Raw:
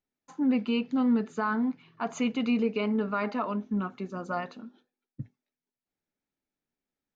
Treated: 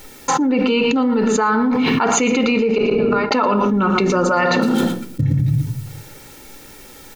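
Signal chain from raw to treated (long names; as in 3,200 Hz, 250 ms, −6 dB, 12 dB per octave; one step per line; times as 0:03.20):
0:04.62–0:05.21: gap after every zero crossing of 0.08 ms
high-shelf EQ 5,100 Hz +4.5 dB
comb filter 2.2 ms, depth 50%
0:02.78–0:03.31: gate with flip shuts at −25 dBFS, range −39 dB
slap from a distant wall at 20 metres, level −12 dB
on a send at −10.5 dB: convolution reverb RT60 0.65 s, pre-delay 4 ms
on the sum: envelope flattener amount 100%
level +7 dB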